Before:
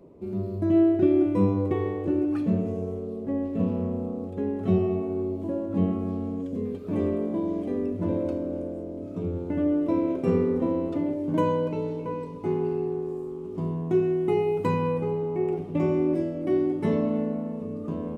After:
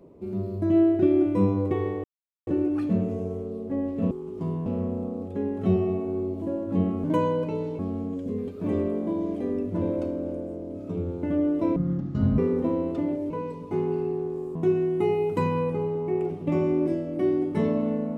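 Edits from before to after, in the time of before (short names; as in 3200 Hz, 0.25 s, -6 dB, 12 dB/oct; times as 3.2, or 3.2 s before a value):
2.04 insert silence 0.43 s
10.03–10.36 speed 53%
11.28–12.03 move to 6.06
13.28–13.83 move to 3.68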